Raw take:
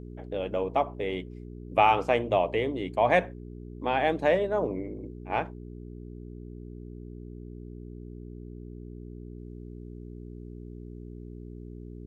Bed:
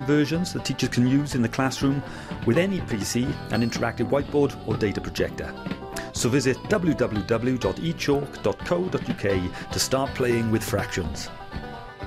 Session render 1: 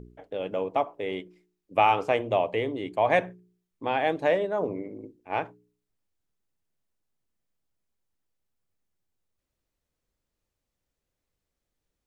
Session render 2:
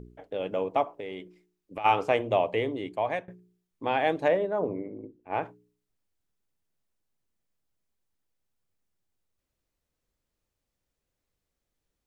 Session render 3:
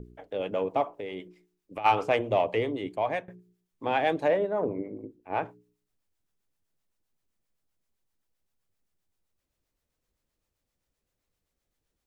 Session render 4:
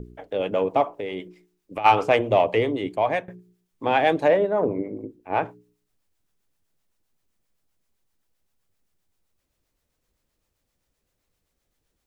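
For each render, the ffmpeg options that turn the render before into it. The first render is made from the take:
ffmpeg -i in.wav -af "bandreject=frequency=60:width_type=h:width=4,bandreject=frequency=120:width_type=h:width=4,bandreject=frequency=180:width_type=h:width=4,bandreject=frequency=240:width_type=h:width=4,bandreject=frequency=300:width_type=h:width=4,bandreject=frequency=360:width_type=h:width=4,bandreject=frequency=420:width_type=h:width=4" out.wav
ffmpeg -i in.wav -filter_complex "[0:a]asplit=3[link_01][link_02][link_03];[link_01]afade=type=out:start_time=0.88:duration=0.02[link_04];[link_02]acompressor=threshold=-33dB:ratio=6:attack=3.2:release=140:knee=1:detection=peak,afade=type=in:start_time=0.88:duration=0.02,afade=type=out:start_time=1.84:duration=0.02[link_05];[link_03]afade=type=in:start_time=1.84:duration=0.02[link_06];[link_04][link_05][link_06]amix=inputs=3:normalize=0,asettb=1/sr,asplit=3[link_07][link_08][link_09];[link_07]atrim=end=4.284[link_10];[link_08]atrim=start=4.28:end=5.43,asetpts=PTS-STARTPTS,afade=type=in:duration=0.004:curve=qsin,afade=type=out:start_time=1.146:duration=0.004:curve=qsin,highshelf=frequency=2700:gain=-11.5[link_11];[link_09]atrim=start=5.426[link_12];[link_10][link_11]acrossfade=duration=0.004:curve1=hsin:curve2=qsin[link_13];[link_13][link_12]acrossfade=duration=0.004:curve1=qsin:curve2=hsin,asplit=2[link_14][link_15];[link_14]atrim=end=3.28,asetpts=PTS-STARTPTS,afade=type=out:start_time=2.56:duration=0.72:curve=qsin:silence=0.0891251[link_16];[link_15]atrim=start=3.28,asetpts=PTS-STARTPTS,afade=type=in:duration=0.004:curve=hsin:silence=0.0891251[link_17];[link_16][link_17]concat=n=2:v=0:a=1" out.wav
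ffmpeg -i in.wav -filter_complex "[0:a]asplit=2[link_01][link_02];[link_02]asoftclip=type=tanh:threshold=-21.5dB,volume=-7dB[link_03];[link_01][link_03]amix=inputs=2:normalize=0,acrossover=split=580[link_04][link_05];[link_04]aeval=exprs='val(0)*(1-0.5/2+0.5/2*cos(2*PI*7.7*n/s))':channel_layout=same[link_06];[link_05]aeval=exprs='val(0)*(1-0.5/2-0.5/2*cos(2*PI*7.7*n/s))':channel_layout=same[link_07];[link_06][link_07]amix=inputs=2:normalize=0" out.wav
ffmpeg -i in.wav -af "volume=6dB" out.wav

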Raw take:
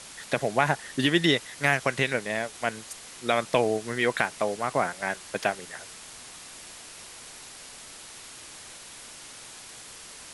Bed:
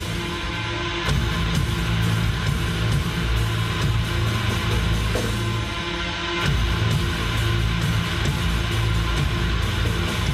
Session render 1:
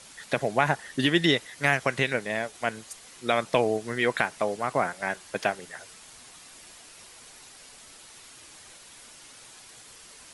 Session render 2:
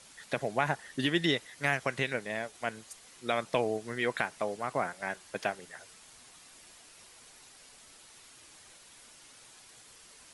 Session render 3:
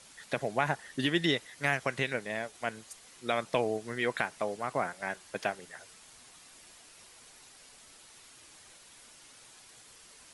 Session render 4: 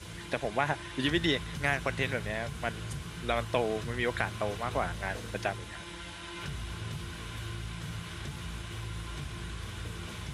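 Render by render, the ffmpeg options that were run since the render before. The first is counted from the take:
ffmpeg -i in.wav -af "afftdn=noise_reduction=6:noise_floor=-45" out.wav
ffmpeg -i in.wav -af "volume=-6dB" out.wav
ffmpeg -i in.wav -af anull out.wav
ffmpeg -i in.wav -i bed.wav -filter_complex "[1:a]volume=-17.5dB[link_01];[0:a][link_01]amix=inputs=2:normalize=0" out.wav

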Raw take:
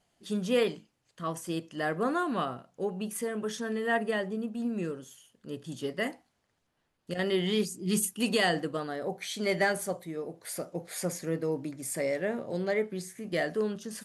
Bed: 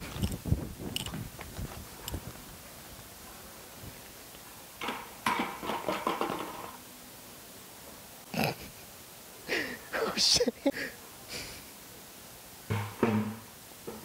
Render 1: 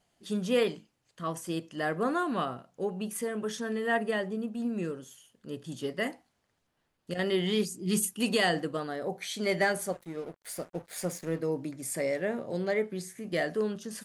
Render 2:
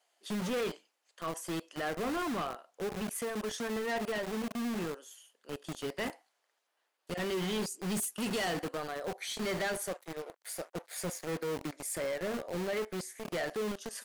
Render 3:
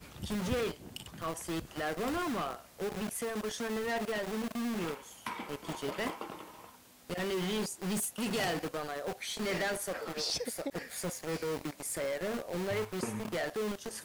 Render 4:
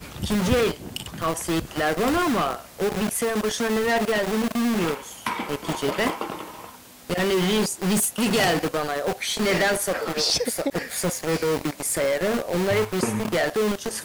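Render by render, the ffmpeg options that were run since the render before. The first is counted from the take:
ffmpeg -i in.wav -filter_complex "[0:a]asettb=1/sr,asplit=3[link_01][link_02][link_03];[link_01]atrim=end=9.924[link_04];[link_02]atrim=start=9.92:end=11.4,asetpts=PTS-STARTPTS,afade=type=in:duration=0.004:curve=qsin,afade=type=out:start_time=1.476:duration=0.004:curve=qsin,aeval=exprs='sgn(val(0))*max(abs(val(0))-0.00355,0)':channel_layout=same[link_05];[link_03]atrim=start=11.396[link_06];[link_04][link_05]acrossfade=duration=0.004:curve1=hsin:curve2=qsin[link_07];[link_07][link_06]acrossfade=duration=0.004:curve1=qsin:curve2=hsin" out.wav
ffmpeg -i in.wav -filter_complex "[0:a]acrossover=split=430|5200[link_01][link_02][link_03];[link_01]acrusher=bits=5:mix=0:aa=0.000001[link_04];[link_04][link_02][link_03]amix=inputs=3:normalize=0,asoftclip=type=tanh:threshold=-30dB" out.wav
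ffmpeg -i in.wav -i bed.wav -filter_complex "[1:a]volume=-10dB[link_01];[0:a][link_01]amix=inputs=2:normalize=0" out.wav
ffmpeg -i in.wav -af "volume=12dB" out.wav

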